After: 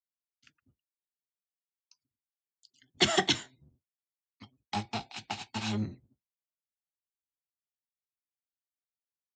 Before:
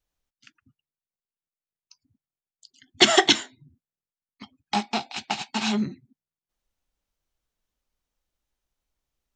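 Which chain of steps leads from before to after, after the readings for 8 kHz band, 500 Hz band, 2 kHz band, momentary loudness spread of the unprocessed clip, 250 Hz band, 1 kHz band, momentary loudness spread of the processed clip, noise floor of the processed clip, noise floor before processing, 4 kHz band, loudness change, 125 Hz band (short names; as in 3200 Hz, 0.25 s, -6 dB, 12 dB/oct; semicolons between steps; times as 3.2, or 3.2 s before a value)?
-9.0 dB, -9.0 dB, -9.0 dB, 14 LU, -8.5 dB, -9.0 dB, 14 LU, under -85 dBFS, under -85 dBFS, -9.0 dB, -8.5 dB, +0.5 dB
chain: octaver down 1 oct, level -1 dB; HPF 72 Hz; gate with hold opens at -54 dBFS; gain -9 dB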